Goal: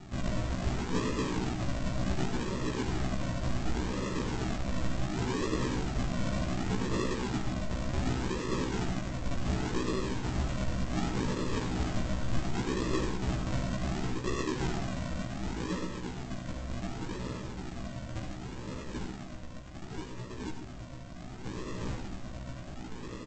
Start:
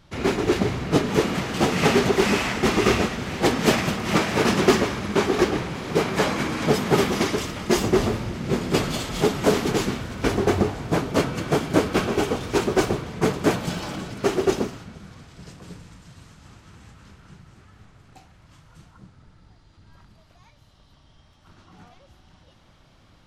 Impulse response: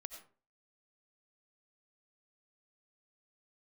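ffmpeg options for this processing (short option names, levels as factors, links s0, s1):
-filter_complex "[0:a]highpass=f=360:p=1,areverse,acompressor=threshold=0.0158:ratio=6,areverse,asplit=2[s0][s1];[s1]highpass=f=720:p=1,volume=28.2,asoftclip=type=tanh:threshold=0.0562[s2];[s0][s2]amix=inputs=2:normalize=0,lowpass=f=1300:p=1,volume=0.501,aresample=16000,acrusher=samples=30:mix=1:aa=0.000001:lfo=1:lforange=18:lforate=0.68,aresample=44100,asplit=2[s3][s4];[s4]adelay=16,volume=0.794[s5];[s3][s5]amix=inputs=2:normalize=0[s6];[1:a]atrim=start_sample=2205[s7];[s6][s7]afir=irnorm=-1:irlink=0,volume=1.78"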